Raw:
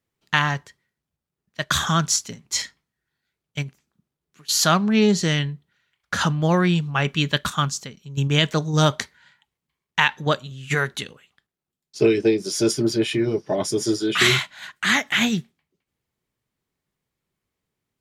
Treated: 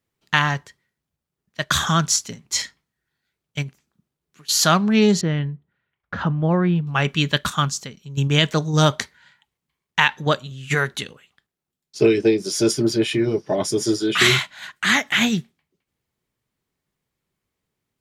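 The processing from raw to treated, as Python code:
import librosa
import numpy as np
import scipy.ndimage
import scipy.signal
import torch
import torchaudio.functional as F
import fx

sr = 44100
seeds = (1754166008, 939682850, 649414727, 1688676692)

y = fx.spacing_loss(x, sr, db_at_10k=44, at=(5.21, 6.87))
y = F.gain(torch.from_numpy(y), 1.5).numpy()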